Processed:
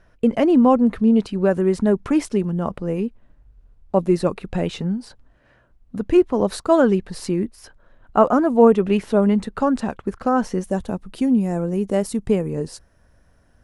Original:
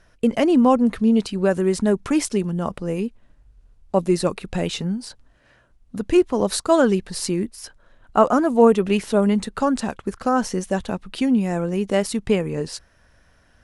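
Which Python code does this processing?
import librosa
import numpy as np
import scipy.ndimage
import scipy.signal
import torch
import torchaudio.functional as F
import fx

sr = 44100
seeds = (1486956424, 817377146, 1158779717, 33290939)

y = fx.peak_eq(x, sr, hz=fx.steps((0.0, 8500.0), (10.64, 3000.0)), db=-10.5, octaves=2.9)
y = F.gain(torch.from_numpy(y), 1.5).numpy()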